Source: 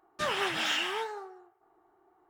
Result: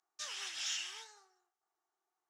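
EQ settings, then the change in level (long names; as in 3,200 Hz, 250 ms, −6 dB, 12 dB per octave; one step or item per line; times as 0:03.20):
resonant band-pass 6,100 Hz, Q 2.7
+3.5 dB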